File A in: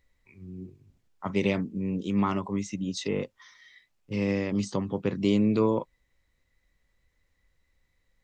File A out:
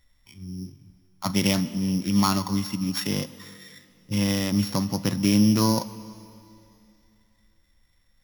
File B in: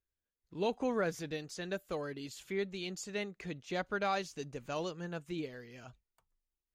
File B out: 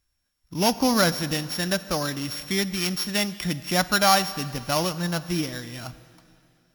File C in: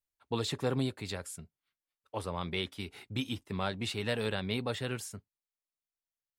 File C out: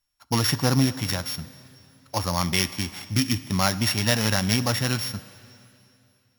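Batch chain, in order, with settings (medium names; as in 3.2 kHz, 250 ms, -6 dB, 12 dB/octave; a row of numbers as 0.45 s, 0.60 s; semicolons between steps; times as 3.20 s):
sorted samples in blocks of 8 samples; peaking EQ 430 Hz -14.5 dB 0.54 oct; plate-style reverb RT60 2.7 s, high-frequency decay 1×, DRR 14.5 dB; normalise loudness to -24 LUFS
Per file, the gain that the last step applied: +6.5 dB, +16.0 dB, +13.0 dB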